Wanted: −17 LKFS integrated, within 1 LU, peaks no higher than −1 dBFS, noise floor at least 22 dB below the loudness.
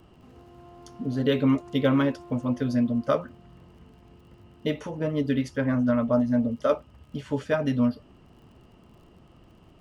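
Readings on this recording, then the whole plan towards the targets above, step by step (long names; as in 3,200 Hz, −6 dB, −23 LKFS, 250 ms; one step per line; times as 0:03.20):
crackle rate 44 per second; integrated loudness −26.0 LKFS; sample peak −10.5 dBFS; target loudness −17.0 LKFS
→ click removal
level +9 dB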